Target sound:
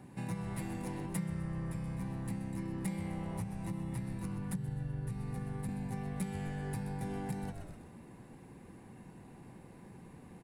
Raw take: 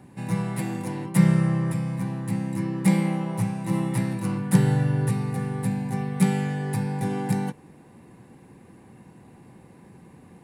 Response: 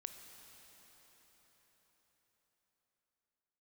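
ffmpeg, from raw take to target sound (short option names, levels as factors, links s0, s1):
-filter_complex "[0:a]asettb=1/sr,asplit=3[s0][s1][s2];[s0]atrim=end=3.414[s3];[s1]atrim=start=3.41:end=5.69,asetpts=PTS-STARTPTS,afade=t=in:d=0.004:c=qsin,afade=t=out:st=2.276:d=0.004:c=qsin,acrossover=split=190[s4][s5];[s5]acompressor=threshold=0.0224:ratio=5[s6];[s4][s6]amix=inputs=2:normalize=0[s7];[s2]atrim=start=5.686[s8];[s3][s7]acrossfade=d=0.004:c1=hsin:c2=qsin[s9];[s9][s8]acrossfade=d=0.004:c1=qsin:c2=hsin,asplit=5[s10][s11][s12][s13][s14];[s11]adelay=127,afreqshift=-93,volume=0.282[s15];[s12]adelay=254,afreqshift=-186,volume=0.122[s16];[s13]adelay=381,afreqshift=-279,volume=0.0519[s17];[s14]adelay=508,afreqshift=-372,volume=0.0224[s18];[s10][s15][s16][s17][s18]amix=inputs=5:normalize=0,acompressor=threshold=0.0251:ratio=5,volume=0.631"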